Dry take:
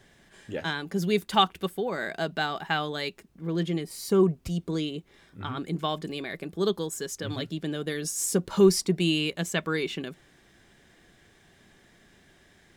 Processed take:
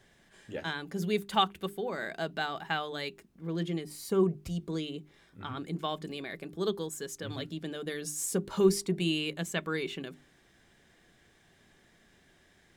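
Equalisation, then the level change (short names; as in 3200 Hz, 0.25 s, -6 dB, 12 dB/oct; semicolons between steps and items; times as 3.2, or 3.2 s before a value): notches 50/100/150/200/250/300/350/400 Hz; dynamic EQ 5300 Hz, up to -4 dB, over -48 dBFS, Q 2.7; -4.5 dB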